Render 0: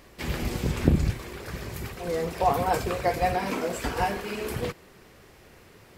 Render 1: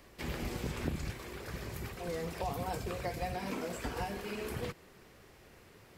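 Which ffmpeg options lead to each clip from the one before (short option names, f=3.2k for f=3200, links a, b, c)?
-filter_complex "[0:a]acrossover=split=260|810|2400[a][b][c][d];[a]acompressor=threshold=-31dB:ratio=4[e];[b]acompressor=threshold=-35dB:ratio=4[f];[c]acompressor=threshold=-40dB:ratio=4[g];[d]acompressor=threshold=-42dB:ratio=4[h];[e][f][g][h]amix=inputs=4:normalize=0,volume=-5.5dB"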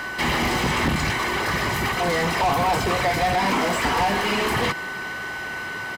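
-filter_complex "[0:a]aeval=exprs='val(0)+0.00282*sin(2*PI*1500*n/s)':c=same,aecho=1:1:1:0.51,asplit=2[a][b];[b]highpass=f=720:p=1,volume=27dB,asoftclip=type=tanh:threshold=-21dB[c];[a][c]amix=inputs=2:normalize=0,lowpass=f=2.5k:p=1,volume=-6dB,volume=8.5dB"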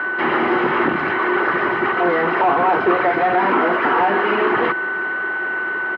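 -af "highpass=280,equalizer=f=360:t=q:w=4:g=10,equalizer=f=1.4k:t=q:w=4:g=8,equalizer=f=2.2k:t=q:w=4:g=-5,lowpass=f=2.4k:w=0.5412,lowpass=f=2.4k:w=1.3066,volume=4dB"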